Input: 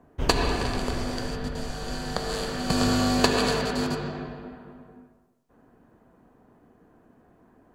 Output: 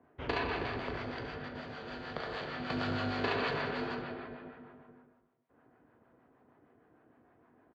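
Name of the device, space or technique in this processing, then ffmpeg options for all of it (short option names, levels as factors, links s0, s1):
guitar amplifier with harmonic tremolo: -filter_complex "[0:a]asettb=1/sr,asplit=3[s0][s1][s2];[s0]atrim=end=1.384[s3];[s1]atrim=start=1.38:end=1.9,asetpts=PTS-STARTPTS,afade=t=in:d=0.004:c=qsin,afade=t=out:st=0.516:d=0.004:c=qsin,highpass=95[s4];[s2]atrim=start=1.896[s5];[s3][s4]acrossfade=d=0.004:c1=hsin:c2=qsin[s6];[s6][s5]acrossfade=d=0.004:c1=qsin:c2=hsin,aecho=1:1:37|70:0.335|0.422,acrossover=split=590[s7][s8];[s7]aeval=exprs='val(0)*(1-0.5/2+0.5/2*cos(2*PI*6.5*n/s))':c=same[s9];[s8]aeval=exprs='val(0)*(1-0.5/2-0.5/2*cos(2*PI*6.5*n/s))':c=same[s10];[s9][s10]amix=inputs=2:normalize=0,asoftclip=type=tanh:threshold=0.119,highpass=95,equalizer=f=190:t=q:w=4:g=-9,equalizer=f=1400:t=q:w=4:g=3,equalizer=f=2100:t=q:w=4:g=5,lowpass=f=3600:w=0.5412,lowpass=f=3600:w=1.3066,volume=0.562"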